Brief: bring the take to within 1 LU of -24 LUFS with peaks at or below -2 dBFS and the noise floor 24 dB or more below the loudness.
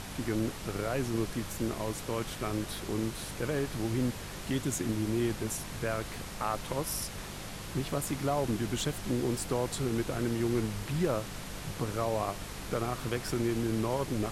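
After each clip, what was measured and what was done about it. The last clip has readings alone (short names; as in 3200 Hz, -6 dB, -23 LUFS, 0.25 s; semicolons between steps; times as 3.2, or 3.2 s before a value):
hum 50 Hz; harmonics up to 200 Hz; hum level -45 dBFS; noise floor -42 dBFS; noise floor target -58 dBFS; loudness -33.5 LUFS; peak -17.5 dBFS; loudness target -24.0 LUFS
-> de-hum 50 Hz, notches 4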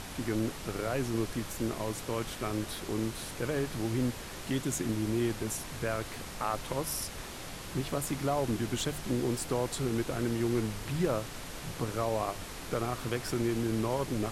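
hum none; noise floor -43 dBFS; noise floor target -58 dBFS
-> noise print and reduce 15 dB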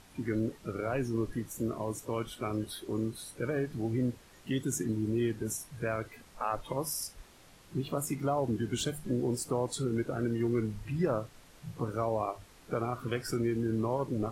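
noise floor -57 dBFS; noise floor target -58 dBFS
-> noise print and reduce 6 dB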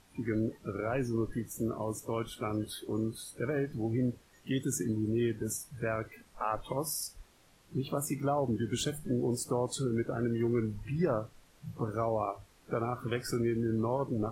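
noise floor -63 dBFS; loudness -34.0 LUFS; peak -18.5 dBFS; loudness target -24.0 LUFS
-> gain +10 dB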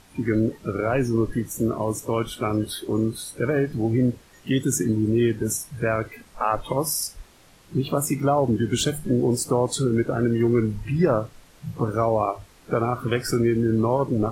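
loudness -24.0 LUFS; peak -8.5 dBFS; noise floor -53 dBFS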